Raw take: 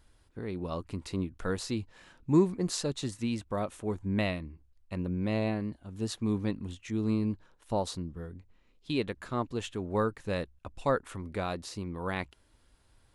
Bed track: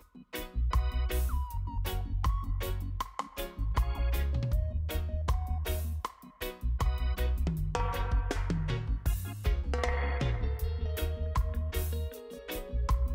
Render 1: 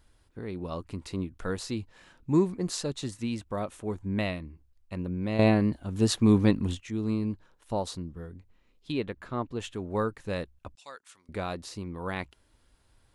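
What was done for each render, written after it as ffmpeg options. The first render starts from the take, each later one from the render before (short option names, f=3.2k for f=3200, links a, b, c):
-filter_complex "[0:a]asettb=1/sr,asplit=3[a][b][c];[a]atrim=end=8.924[d];[b]atrim=start=8.92:end=9.6,asetpts=PTS-STARTPTS,afade=t=in:d=0.004:c=qsin,afade=t=out:st=0.676:d=0.004:c=qsin,equalizer=f=8.8k:t=o:w=1.8:g=-10[e];[c]atrim=start=9.596[f];[d][e]acrossfade=d=0.004:c1=hsin:c2=qsin[g];[g][f]acrossfade=d=0.004:c1=qsin:c2=hsin,asettb=1/sr,asplit=3[h][i][j];[h]atrim=end=10.754[k];[i]atrim=start=10.75:end=11.29,asetpts=PTS-STARTPTS,afade=t=in:d=0.004:c=qsin,afade=t=out:st=0.536:d=0.004:c=qsin,bandpass=f=5.8k:t=q:w=1[l];[j]atrim=start=11.286[m];[k][l]acrossfade=d=0.004:c1=hsin:c2=qsin[n];[n][m]acrossfade=d=0.004:c1=qsin:c2=hsin,asplit=3[o][p][q];[o]atrim=end=5.392[r];[p]atrim=start=5.388:end=6.802,asetpts=PTS-STARTPTS,volume=9.5dB[s];[q]atrim=start=6.798[t];[r][s]acrossfade=d=0.004:c1=hsin:c2=hsin[u];[u][t]acrossfade=d=0.004:c1=hsin:c2=hsin"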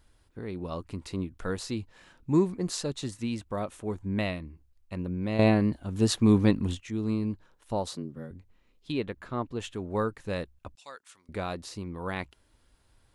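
-filter_complex "[0:a]asettb=1/sr,asplit=3[a][b][c];[a]atrim=end=7.904[d];[b]atrim=start=7.9:end=8.31,asetpts=PTS-STARTPTS,afade=t=in:d=0.004:c=qsin,afade=t=out:st=0.406:d=0.004:c=qsin,afreqshift=65[e];[c]atrim=start=8.306[f];[d][e]acrossfade=d=0.004:c1=hsin:c2=qsin[g];[g][f]acrossfade=d=0.004:c1=qsin:c2=hsin"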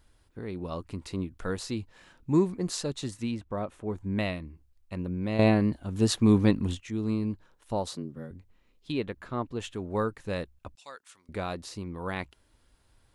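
-filter_complex "[0:a]asettb=1/sr,asplit=3[a][b][c];[a]atrim=end=3.314[d];[b]atrim=start=3.31:end=3.95,asetpts=PTS-STARTPTS,afade=t=in:d=0.004:c=qsin,afade=t=out:st=0.636:d=0.004:c=qsin,highshelf=f=3.3k:g=-12[e];[c]atrim=start=3.946[f];[d][e]acrossfade=d=0.004:c1=hsin:c2=qsin[g];[g][f]acrossfade=d=0.004:c1=qsin:c2=hsin"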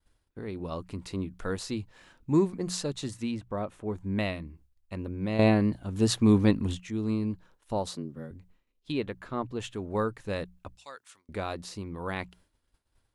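-af "bandreject=f=60:t=h:w=6,bandreject=f=120:t=h:w=6,bandreject=f=180:t=h:w=6,agate=range=-33dB:threshold=-55dB:ratio=3:detection=peak"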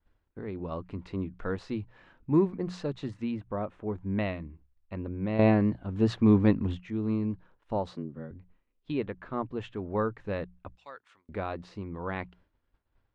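-af "lowpass=2.3k,bandreject=f=60:t=h:w=6,bandreject=f=120:t=h:w=6"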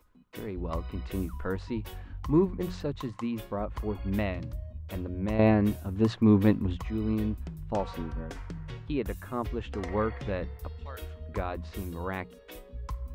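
-filter_complex "[1:a]volume=-8dB[a];[0:a][a]amix=inputs=2:normalize=0"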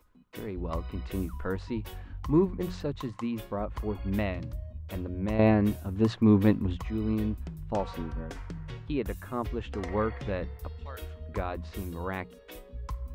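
-af anull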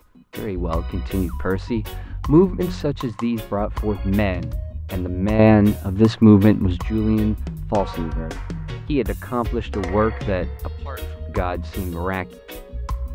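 -af "volume=10dB,alimiter=limit=-3dB:level=0:latency=1"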